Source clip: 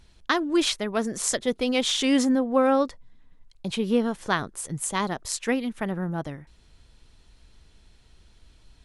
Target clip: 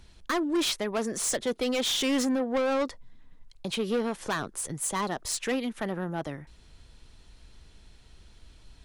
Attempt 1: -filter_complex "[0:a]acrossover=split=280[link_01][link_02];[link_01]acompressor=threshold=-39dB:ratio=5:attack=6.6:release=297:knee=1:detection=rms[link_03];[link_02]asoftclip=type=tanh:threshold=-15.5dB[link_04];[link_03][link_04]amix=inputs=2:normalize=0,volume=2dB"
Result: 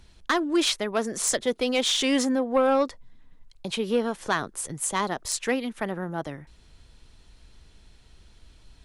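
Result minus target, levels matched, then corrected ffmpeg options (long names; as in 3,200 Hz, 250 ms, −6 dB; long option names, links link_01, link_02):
soft clipping: distortion −10 dB
-filter_complex "[0:a]acrossover=split=280[link_01][link_02];[link_01]acompressor=threshold=-39dB:ratio=5:attack=6.6:release=297:knee=1:detection=rms[link_03];[link_02]asoftclip=type=tanh:threshold=-26dB[link_04];[link_03][link_04]amix=inputs=2:normalize=0,volume=2dB"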